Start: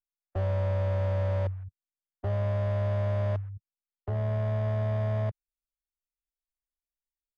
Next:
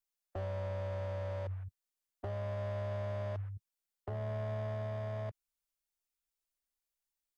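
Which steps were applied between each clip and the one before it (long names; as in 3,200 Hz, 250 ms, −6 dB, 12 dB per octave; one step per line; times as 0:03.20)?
bass and treble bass −5 dB, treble +4 dB
brickwall limiter −33.5 dBFS, peak gain reduction 10 dB
level +1.5 dB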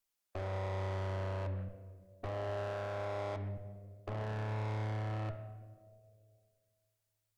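tube saturation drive 44 dB, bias 0.65
on a send at −7 dB: convolution reverb RT60 2.0 s, pre-delay 3 ms
on the sum: level +7.5 dB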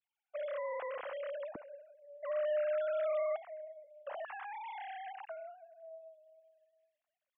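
three sine waves on the formant tracks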